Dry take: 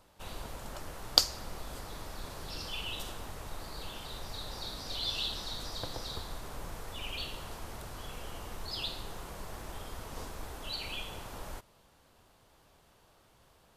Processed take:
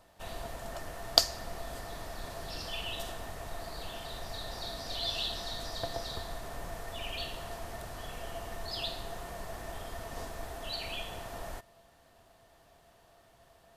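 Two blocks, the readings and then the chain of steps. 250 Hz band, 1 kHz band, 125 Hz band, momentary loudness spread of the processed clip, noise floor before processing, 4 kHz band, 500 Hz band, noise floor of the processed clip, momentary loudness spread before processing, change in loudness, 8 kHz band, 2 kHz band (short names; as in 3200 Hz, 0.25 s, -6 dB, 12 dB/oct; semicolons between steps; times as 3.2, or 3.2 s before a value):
0.0 dB, +3.0 dB, 0.0 dB, 9 LU, -64 dBFS, 0.0 dB, +5.5 dB, -62 dBFS, 11 LU, +0.5 dB, 0.0 dB, +2.0 dB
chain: small resonant body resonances 680/1800 Hz, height 15 dB, ringing for 85 ms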